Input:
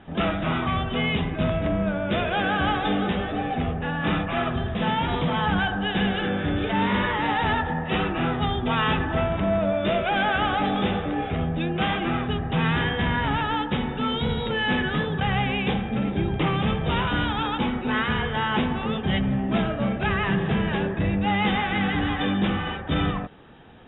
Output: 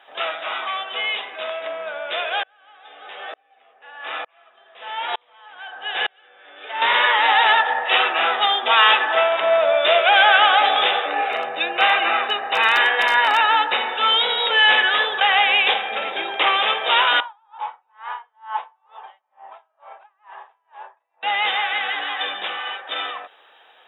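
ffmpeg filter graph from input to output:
-filter_complex "[0:a]asettb=1/sr,asplit=3[s0][s1][s2];[s0]atrim=end=2.434[s3];[s1]atrim=start=2.43:end=6.82,asetpts=PTS-STARTPTS,afade=t=in:d=0.004:c=qsin,afade=t=out:st=4.386:d=0.004:c=qsin,highpass=190,lowpass=3400,aeval=exprs='val(0)*pow(10,-38*if(lt(mod(-1.1*n/s,1),2*abs(-1.1)/1000),1-mod(-1.1*n/s,1)/(2*abs(-1.1)/1000),(mod(-1.1*n/s,1)-2*abs(-1.1)/1000)/(1-2*abs(-1.1)/1000))/20)':c=same[s4];[s2]atrim=start=6.816[s5];[s3][s4]acrossfade=d=0.004:c1=hsin:c2=qsin[s6];[s6][s5]acrossfade=d=0.004:c1=qsin:c2=hsin,asettb=1/sr,asplit=3[s7][s8][s9];[s7]atrim=end=11.074[s10];[s8]atrim=start=11.07:end=13.93,asetpts=PTS-STARTPTS,afade=t=in:d=0.004:c=qsin,afade=t=out:st=2.856:d=0.004:c=qsin,lowshelf=f=120:g=9.5,asoftclip=type=hard:threshold=0.237,asuperstop=centerf=3300:order=4:qfactor=7.4[s11];[s9]atrim=start=13.926[s12];[s10][s11]acrossfade=d=0.004:c1=hsin:c2=qsin[s13];[s13][s12]acrossfade=d=0.004:c1=qsin:c2=hsin,asettb=1/sr,asplit=3[s14][s15][s16];[s14]atrim=end=17.204[s17];[s15]atrim=start=17.2:end=21.23,asetpts=PTS-STARTPTS,afade=t=in:d=0.004:c=qsin,afade=t=out:st=4.026:d=0.004:c=qsin,bandpass=f=930:t=q:w=5.2,aeval=exprs='val(0)*pow(10,-37*(0.5-0.5*cos(2*PI*2.2*n/s))/20)':c=same[s18];[s16]atrim=start=21.226[s19];[s17][s18]acrossfade=d=0.004:c1=hsin:c2=qsin[s20];[s20][s19]acrossfade=d=0.004:c1=qsin:c2=hsin,highpass=f=570:w=0.5412,highpass=f=570:w=1.3066,highshelf=f=3300:g=11.5,dynaudnorm=f=660:g=17:m=3.76"

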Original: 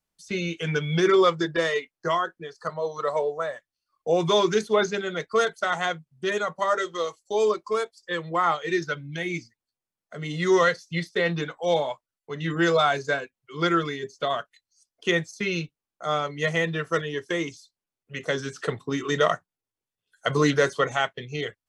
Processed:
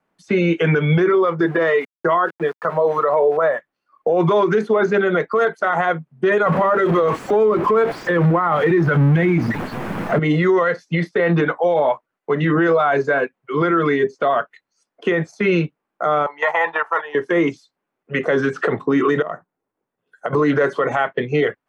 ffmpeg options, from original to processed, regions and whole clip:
-filter_complex "[0:a]asettb=1/sr,asplit=3[s0][s1][s2];[s0]atrim=end=1.404[s3];[s1]atrim=start=1.4:end=3.37,asetpts=PTS-STARTPTS,afade=t=in:d=0.004:c=qsin,afade=t=out:st=1.966:d=0.004:c=qsin,lowpass=6000,aeval=exprs='val(0)*gte(abs(val(0)),0.00531)':c=same[s4];[s2]atrim=start=3.366[s5];[s3][s4]acrossfade=d=0.004:c1=hsin:c2=qsin[s6];[s6][s5]acrossfade=d=0.004:c1=qsin:c2=hsin,asettb=1/sr,asplit=3[s7][s8][s9];[s7]atrim=end=6.464[s10];[s8]atrim=start=6.46:end=10.19,asetpts=PTS-STARTPTS,afade=t=in:d=0.004:c=qsin,afade=t=out:st=3.726:d=0.004:c=qsin,aeval=exprs='val(0)+0.5*0.0251*sgn(val(0))':c=same,bass=f=250:g=12,treble=f=4000:g=-4[s11];[s9]atrim=start=10.186[s12];[s10][s11]acrossfade=d=0.004:c1=hsin:c2=qsin[s13];[s13][s12]acrossfade=d=0.004:c1=qsin:c2=hsin,asettb=1/sr,asplit=3[s14][s15][s16];[s14]atrim=end=16.264[s17];[s15]atrim=start=16.26:end=17.15,asetpts=PTS-STARTPTS,afade=t=in:d=0.004:c=qsin,afade=t=out:st=0.886:d=0.004:c=qsin,agate=range=0.282:threshold=0.0355:ratio=16:release=100:detection=peak,highpass=f=880:t=q:w=11[s18];[s16]atrim=start=17.146[s19];[s17][s18]acrossfade=d=0.004:c1=hsin:c2=qsin[s20];[s20][s19]acrossfade=d=0.004:c1=qsin:c2=hsin,asettb=1/sr,asplit=3[s21][s22][s23];[s21]atrim=end=19.224[s24];[s22]atrim=start=19.22:end=20.33,asetpts=PTS-STARTPTS,afade=t=in:d=0.004:c=qsin,afade=t=out:st=1.106:d=0.004:c=qsin,equalizer=f=2800:t=o:w=2.2:g=-7,acompressor=threshold=0.0126:ratio=6:attack=3.2:release=140:knee=1:detection=peak[s25];[s23]atrim=start=20.326[s26];[s24][s25]acrossfade=d=0.004:c1=hsin:c2=qsin[s27];[s27][s26]acrossfade=d=0.004:c1=qsin:c2=hsin,acrossover=split=160 2100:gain=0.0891 1 0.0631[s28][s29][s30];[s28][s29][s30]amix=inputs=3:normalize=0,acompressor=threshold=0.0631:ratio=6,alimiter=level_in=21.1:limit=0.891:release=50:level=0:latency=1,volume=0.398"

